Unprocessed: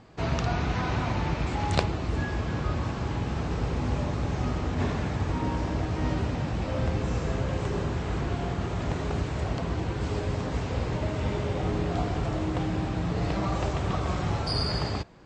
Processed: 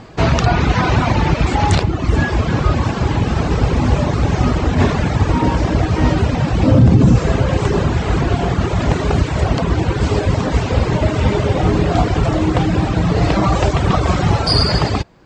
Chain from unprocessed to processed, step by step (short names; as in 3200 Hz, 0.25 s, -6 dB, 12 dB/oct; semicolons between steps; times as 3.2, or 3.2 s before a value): reverb removal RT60 0.83 s; 6.63–7.16 graphic EQ 125/250/2000 Hz +12/+10/-4 dB; maximiser +16.5 dB; gain -1 dB